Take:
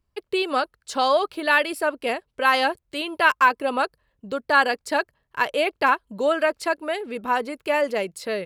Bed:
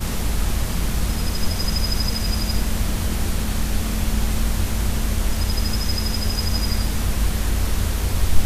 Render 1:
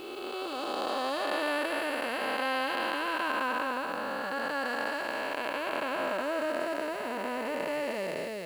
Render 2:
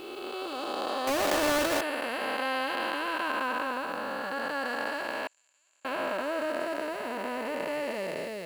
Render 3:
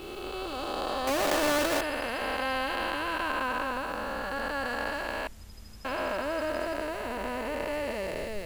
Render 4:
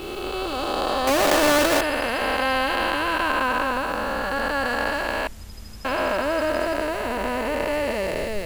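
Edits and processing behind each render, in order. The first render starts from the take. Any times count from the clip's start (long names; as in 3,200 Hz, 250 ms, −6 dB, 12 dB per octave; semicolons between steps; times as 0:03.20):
spectrum smeared in time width 822 ms; bit-depth reduction 10 bits, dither triangular
0:01.07–0:01.81: each half-wave held at its own peak; 0:05.27–0:05.85: resonant band-pass 7,100 Hz, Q 20
mix in bed −26.5 dB
level +8 dB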